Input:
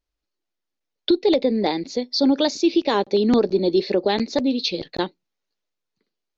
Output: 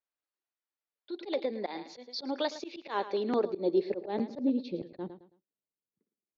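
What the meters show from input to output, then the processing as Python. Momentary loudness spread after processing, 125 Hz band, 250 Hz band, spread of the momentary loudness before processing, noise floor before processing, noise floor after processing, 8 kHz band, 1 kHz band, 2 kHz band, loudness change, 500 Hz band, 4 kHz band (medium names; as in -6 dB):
13 LU, -14.0 dB, -13.5 dB, 8 LU, -82 dBFS, under -85 dBFS, no reading, -10.5 dB, -12.0 dB, -12.5 dB, -11.5 dB, -16.5 dB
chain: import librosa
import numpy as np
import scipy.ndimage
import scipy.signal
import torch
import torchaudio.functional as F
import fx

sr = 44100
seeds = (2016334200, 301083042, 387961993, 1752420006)

y = fx.filter_sweep_bandpass(x, sr, from_hz=1300.0, to_hz=210.0, start_s=3.0, end_s=4.88, q=0.72)
y = fx.echo_feedback(y, sr, ms=109, feedback_pct=29, wet_db=-15)
y = fx.auto_swell(y, sr, attack_ms=103.0)
y = y * 10.0 ** (-6.0 / 20.0)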